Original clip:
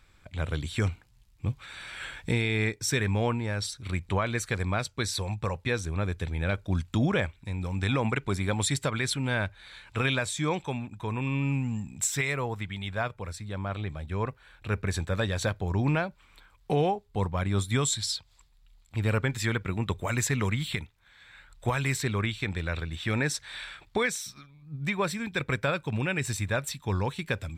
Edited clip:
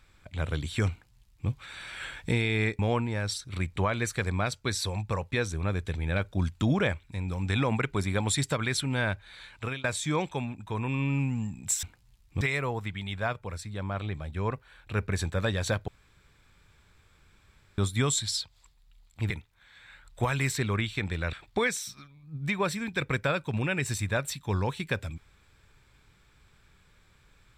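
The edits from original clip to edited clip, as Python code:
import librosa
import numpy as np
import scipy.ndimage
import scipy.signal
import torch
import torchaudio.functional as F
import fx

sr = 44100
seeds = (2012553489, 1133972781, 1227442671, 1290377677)

y = fx.edit(x, sr, fx.duplicate(start_s=0.91, length_s=0.58, to_s=12.16),
    fx.cut(start_s=2.79, length_s=0.33),
    fx.fade_out_to(start_s=9.84, length_s=0.33, floor_db=-22.5),
    fx.room_tone_fill(start_s=15.63, length_s=1.9),
    fx.cut(start_s=19.05, length_s=1.7),
    fx.cut(start_s=22.78, length_s=0.94), tone=tone)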